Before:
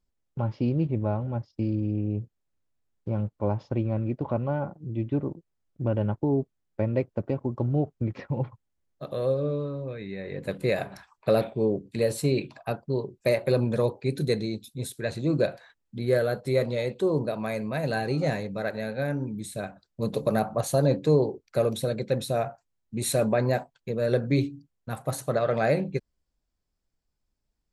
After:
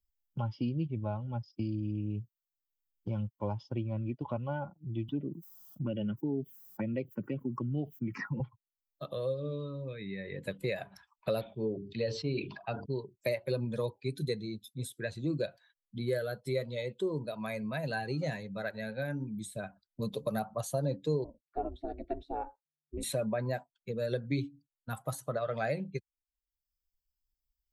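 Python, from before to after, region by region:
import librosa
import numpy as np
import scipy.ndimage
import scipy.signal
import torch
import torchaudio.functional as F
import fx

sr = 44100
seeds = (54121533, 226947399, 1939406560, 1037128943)

y = fx.chain(x, sr, fx.highpass(hz=140.0, slope=24),
    fx.env_phaser(low_hz=350.0, high_hz=1500.0, full_db=-21.0),
    fx.env_flatten(amount_pct=50), at=(5.08, 8.4))
y = fx.chain(y, sr, fx.steep_lowpass(hz=5400.0, slope=36),
    fx.hum_notches(base_hz=50, count=9),
    fx.sustainer(db_per_s=75.0), at=(11.41, 12.86))
y = fx.chain(y, sr, fx.lowpass(hz=1200.0, slope=12),
    fx.ring_mod(carrier_hz=150.0), at=(21.24, 23.03))
y = fx.bin_expand(y, sr, power=1.5)
y = fx.high_shelf(y, sr, hz=3700.0, db=8.5)
y = fx.band_squash(y, sr, depth_pct=70)
y = F.gain(torch.from_numpy(y), -5.0).numpy()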